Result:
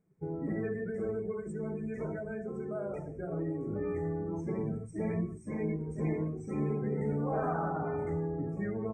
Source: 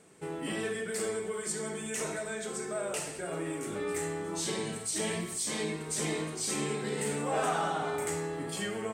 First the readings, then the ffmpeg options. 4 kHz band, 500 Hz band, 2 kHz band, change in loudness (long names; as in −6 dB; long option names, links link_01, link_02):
below −40 dB, −1.0 dB, −9.5 dB, −1.5 dB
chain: -af "aemphasis=mode=reproduction:type=riaa,afftdn=noise_reduction=20:noise_floor=-37,afftfilt=real='re*(1-between(b*sr/4096,2500,5200))':imag='im*(1-between(b*sr/4096,2500,5200))':win_size=4096:overlap=0.75,volume=-4dB"